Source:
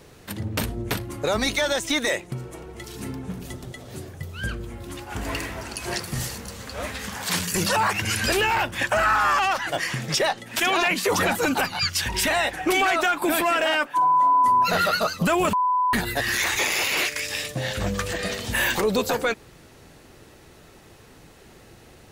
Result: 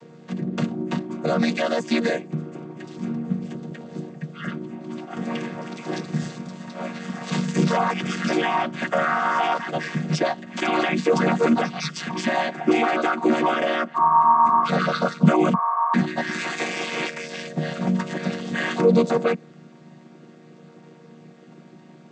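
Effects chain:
channel vocoder with a chord as carrier minor triad, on D#3
level +2.5 dB

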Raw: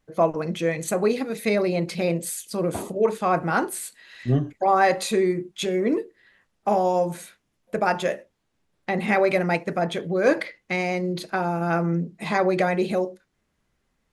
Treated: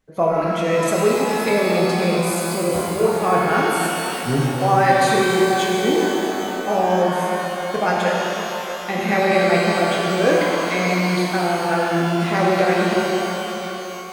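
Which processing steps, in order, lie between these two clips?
0:05.89–0:06.89: transient designer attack −4 dB, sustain +9 dB
reverb with rising layers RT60 3.5 s, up +12 semitones, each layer −8 dB, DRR −3.5 dB

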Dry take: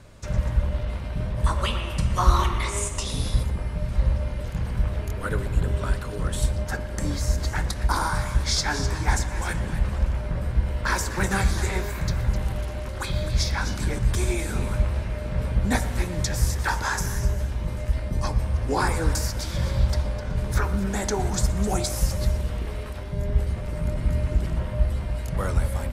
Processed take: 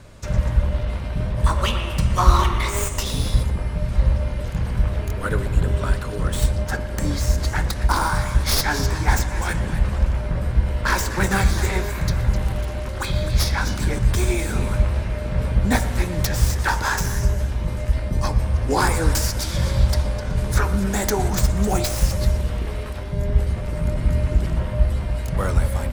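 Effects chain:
stylus tracing distortion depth 0.1 ms
0:18.70–0:21.28: parametric band 10,000 Hz +4.5 dB 1.8 octaves
level +4 dB

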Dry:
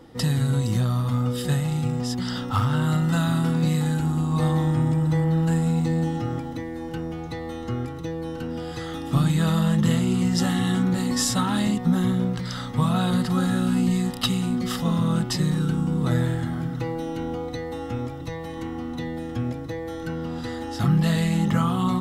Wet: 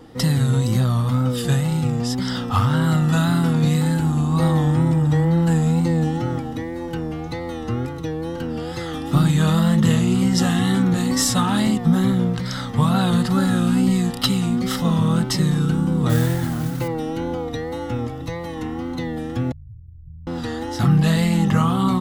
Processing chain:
0:19.52–0:20.27: inverse Chebyshev band-stop filter 540–7,900 Hz, stop band 80 dB
tape wow and flutter 74 cents
0:16.09–0:16.88: noise that follows the level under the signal 18 dB
level +4 dB

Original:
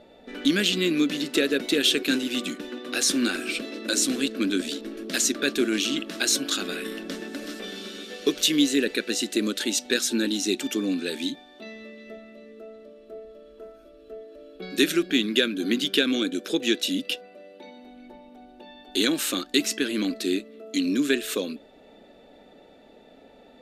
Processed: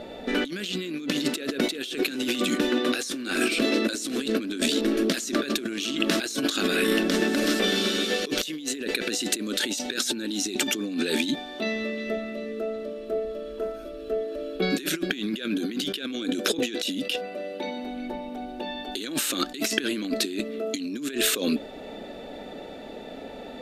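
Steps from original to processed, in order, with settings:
compressor whose output falls as the input rises −34 dBFS, ratio −1
level +6 dB

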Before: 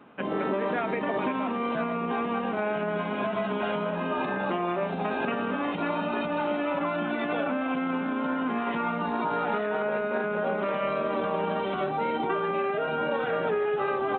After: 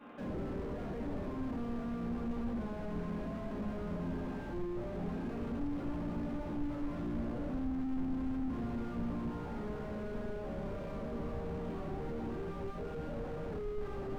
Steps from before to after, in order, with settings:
0:07.08–0:07.80: low-pass filter 1,400 Hz 12 dB per octave
rectangular room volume 180 cubic metres, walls mixed, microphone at 2.3 metres
slew-rate limiting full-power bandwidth 9.7 Hz
level −6.5 dB

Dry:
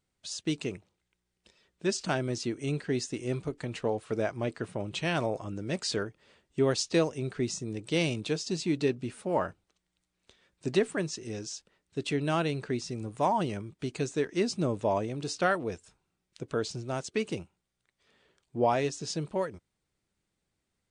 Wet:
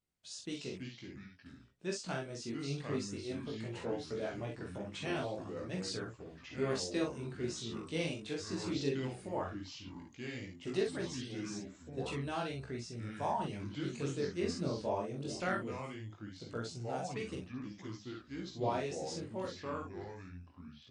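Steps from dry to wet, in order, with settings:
double-tracking delay 43 ms −4 dB
delay with pitch and tempo change per echo 208 ms, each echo −4 semitones, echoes 2, each echo −6 dB
multi-voice chorus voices 2, 0.17 Hz, delay 19 ms, depth 4 ms
level −7 dB

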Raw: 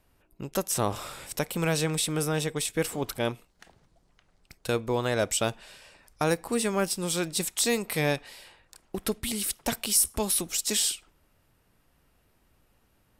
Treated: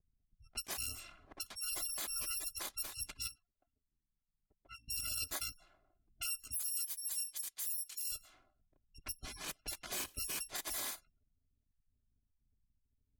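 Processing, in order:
samples in bit-reversed order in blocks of 256 samples
gate on every frequency bin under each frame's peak −20 dB strong
0:03.27–0:04.88: bass and treble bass −11 dB, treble −8 dB
low-pass that shuts in the quiet parts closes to 340 Hz, open at −26 dBFS
0:06.54–0:08.12: first-order pre-emphasis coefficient 0.9
brickwall limiter −21.5 dBFS, peak gain reduction 9 dB
level −8.5 dB

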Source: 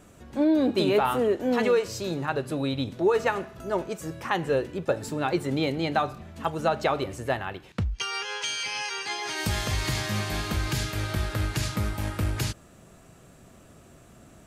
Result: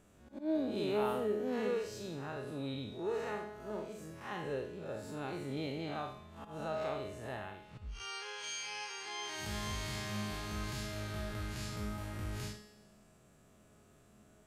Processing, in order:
spectrum smeared in time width 121 ms
volume swells 114 ms
tuned comb filter 210 Hz, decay 1.1 s, mix 80%
level +2.5 dB

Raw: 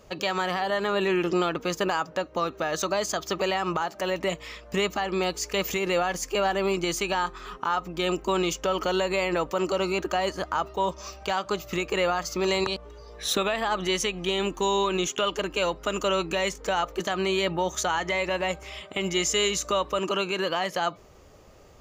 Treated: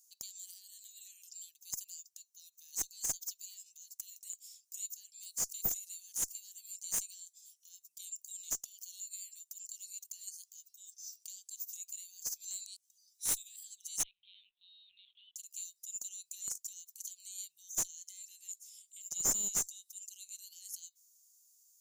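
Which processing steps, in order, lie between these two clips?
inverse Chebyshev high-pass filter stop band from 1,400 Hz, stop band 80 dB
0:14.03–0:15.36: linear-prediction vocoder at 8 kHz pitch kept
asymmetric clip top −38 dBFS
level +6.5 dB

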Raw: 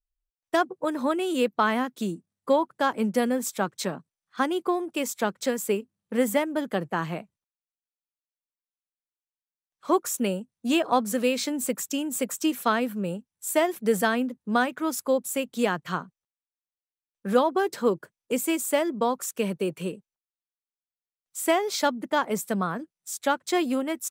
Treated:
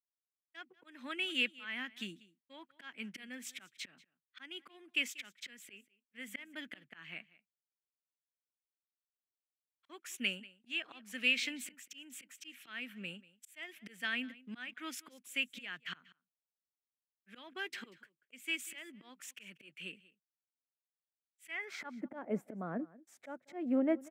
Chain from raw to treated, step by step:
volume swells 362 ms
octave-band graphic EQ 125/250/500/1,000/2,000/4,000/8,000 Hz +6/+7/−7/−11/+7/−11/−5 dB
downward expander −50 dBFS
band-pass filter sweep 3,100 Hz → 620 Hz, 0:21.45–0:22.06
on a send: single-tap delay 189 ms −21 dB
on the sum: level +8 dB

